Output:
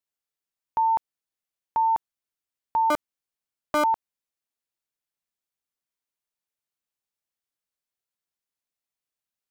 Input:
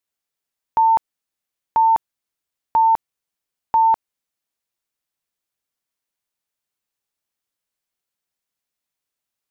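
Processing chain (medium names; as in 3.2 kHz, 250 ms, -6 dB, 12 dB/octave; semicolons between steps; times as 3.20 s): 2.90–3.84 s: cycle switcher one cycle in 3, inverted; trim -7 dB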